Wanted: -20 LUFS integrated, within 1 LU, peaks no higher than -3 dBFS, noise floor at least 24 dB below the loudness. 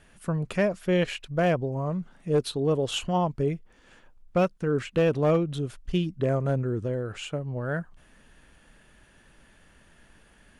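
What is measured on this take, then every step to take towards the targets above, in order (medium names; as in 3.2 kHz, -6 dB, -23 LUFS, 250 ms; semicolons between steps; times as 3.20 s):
clipped samples 0.4%; clipping level -16.0 dBFS; loudness -27.5 LUFS; peak level -16.0 dBFS; loudness target -20.0 LUFS
-> clip repair -16 dBFS; trim +7.5 dB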